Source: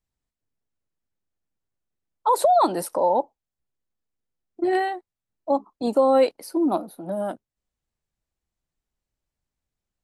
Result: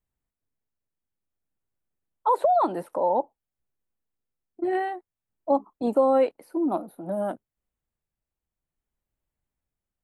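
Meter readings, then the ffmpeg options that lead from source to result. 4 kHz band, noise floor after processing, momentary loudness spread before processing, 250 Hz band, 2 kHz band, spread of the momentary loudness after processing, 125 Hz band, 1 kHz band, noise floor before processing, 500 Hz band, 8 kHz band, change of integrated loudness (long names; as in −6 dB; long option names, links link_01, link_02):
below −10 dB, below −85 dBFS, 14 LU, −2.5 dB, −5.0 dB, 12 LU, can't be measured, −3.0 dB, below −85 dBFS, −2.5 dB, below −15 dB, −2.5 dB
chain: -filter_complex "[0:a]acrossover=split=4000[link_01][link_02];[link_02]acompressor=threshold=-49dB:ratio=4:attack=1:release=60[link_03];[link_01][link_03]amix=inputs=2:normalize=0,equalizer=frequency=5000:width=1.2:gain=-12,tremolo=f=0.54:d=0.36"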